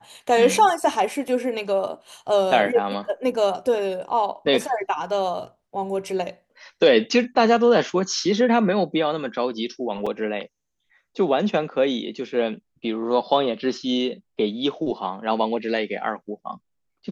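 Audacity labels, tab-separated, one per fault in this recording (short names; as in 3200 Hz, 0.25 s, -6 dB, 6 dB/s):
10.060000	10.060000	gap 5 ms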